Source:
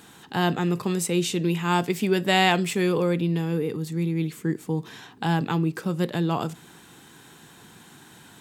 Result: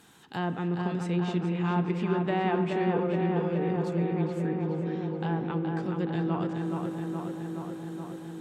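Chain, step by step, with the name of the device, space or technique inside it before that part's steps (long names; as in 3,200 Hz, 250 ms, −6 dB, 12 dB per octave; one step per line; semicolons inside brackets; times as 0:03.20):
treble cut that deepens with the level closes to 1,400 Hz, closed at −18 dBFS
0:04.58–0:05.75: high-frequency loss of the air 180 metres
dub delay into a spring reverb (feedback echo with a low-pass in the loop 422 ms, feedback 77%, low-pass 3,300 Hz, level −4 dB; spring reverb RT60 3.6 s, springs 40 ms, chirp 35 ms, DRR 11.5 dB)
level −7.5 dB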